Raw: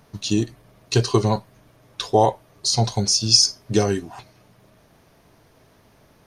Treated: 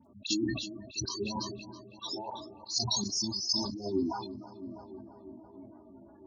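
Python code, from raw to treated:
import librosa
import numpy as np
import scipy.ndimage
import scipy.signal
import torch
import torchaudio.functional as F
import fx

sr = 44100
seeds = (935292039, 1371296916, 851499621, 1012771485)

p1 = fx.over_compress(x, sr, threshold_db=-24.0, ratio=-0.5)
p2 = fx.spec_gate(p1, sr, threshold_db=-10, keep='strong')
p3 = fx.high_shelf(p2, sr, hz=4800.0, db=8.5)
p4 = p3 + fx.echo_filtered(p3, sr, ms=325, feedback_pct=76, hz=2300.0, wet_db=-14.5, dry=0)
p5 = fx.chorus_voices(p4, sr, voices=6, hz=0.75, base_ms=14, depth_ms=1.9, mix_pct=40)
p6 = fx.auto_swell(p5, sr, attack_ms=115.0)
p7 = scipy.signal.sosfilt(scipy.signal.butter(2, 150.0, 'highpass', fs=sr, output='sos'), p6)
p8 = fx.peak_eq(p7, sr, hz=530.0, db=-13.0, octaves=0.27)
p9 = p8 + 0.82 * np.pad(p8, (int(3.4 * sr / 1000.0), 0))[:len(p8)]
p10 = fx.dispersion(p9, sr, late='highs', ms=54.0, hz=2900.0)
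p11 = fx.sustainer(p10, sr, db_per_s=51.0)
y = F.gain(torch.from_numpy(p11), -2.5).numpy()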